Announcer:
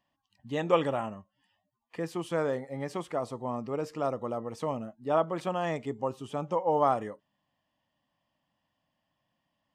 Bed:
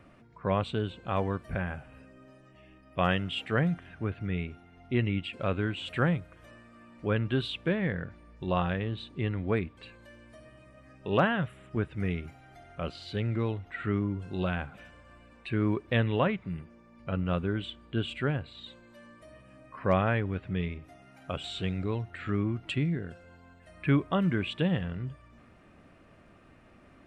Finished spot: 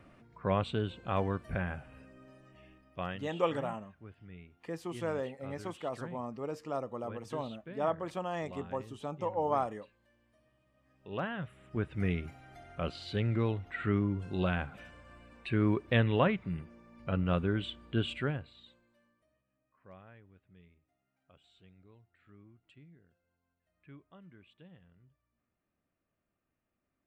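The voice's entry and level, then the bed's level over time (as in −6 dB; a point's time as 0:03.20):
2.70 s, −5.5 dB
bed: 0:02.66 −2 dB
0:03.34 −18.5 dB
0:10.69 −18.5 dB
0:12.02 −0.5 dB
0:18.10 −0.5 dB
0:19.47 −28.5 dB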